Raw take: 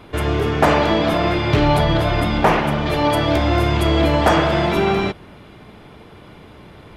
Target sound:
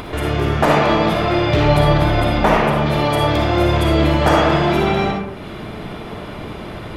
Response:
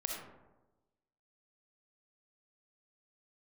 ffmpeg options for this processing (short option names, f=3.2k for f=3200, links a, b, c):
-filter_complex "[0:a]acompressor=mode=upward:threshold=-20dB:ratio=2.5[a];[1:a]atrim=start_sample=2205,afade=t=out:st=0.33:d=0.01,atrim=end_sample=14994[b];[a][b]afir=irnorm=-1:irlink=0"